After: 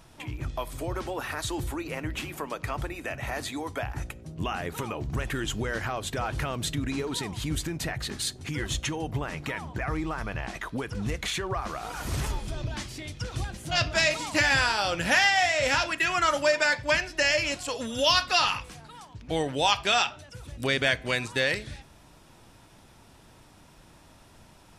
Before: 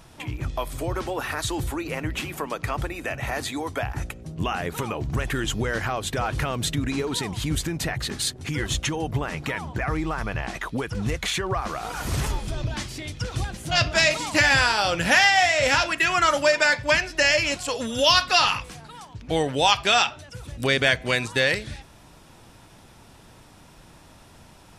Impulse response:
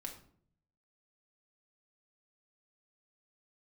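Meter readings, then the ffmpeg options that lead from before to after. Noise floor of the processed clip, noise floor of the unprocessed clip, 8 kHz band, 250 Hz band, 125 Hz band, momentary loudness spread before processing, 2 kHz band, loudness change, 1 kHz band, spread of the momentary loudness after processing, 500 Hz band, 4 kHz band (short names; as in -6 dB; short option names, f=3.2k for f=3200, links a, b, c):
-54 dBFS, -50 dBFS, -4.5 dB, -4.0 dB, -4.5 dB, 13 LU, -4.5 dB, -4.5 dB, -4.5 dB, 13 LU, -4.0 dB, -4.5 dB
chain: -filter_complex "[0:a]asplit=2[a][b];[1:a]atrim=start_sample=2205,asetrate=52920,aresample=44100[c];[b][c]afir=irnorm=-1:irlink=0,volume=-10dB[d];[a][d]amix=inputs=2:normalize=0,volume=-5.5dB"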